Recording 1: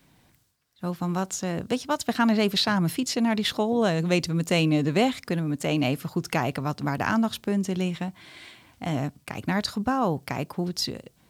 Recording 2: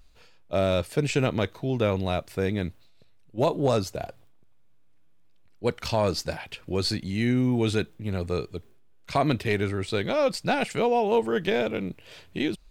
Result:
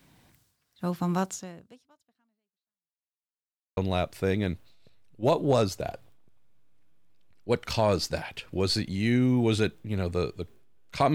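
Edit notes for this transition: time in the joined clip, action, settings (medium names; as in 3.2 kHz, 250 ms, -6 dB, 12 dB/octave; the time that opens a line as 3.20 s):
recording 1
1.24–3.11 s: fade out exponential
3.11–3.77 s: mute
3.77 s: go over to recording 2 from 1.92 s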